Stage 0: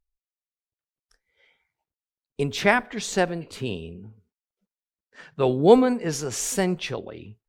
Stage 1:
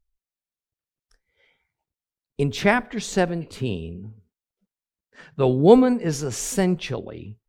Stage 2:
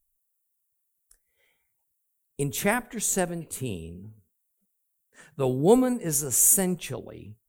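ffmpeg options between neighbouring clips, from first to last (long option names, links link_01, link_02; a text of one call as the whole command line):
ffmpeg -i in.wav -af "lowshelf=frequency=310:gain=7.5,volume=-1dB" out.wav
ffmpeg -i in.wav -af "aexciter=amount=15.1:drive=3.2:freq=7200,volume=-6dB" out.wav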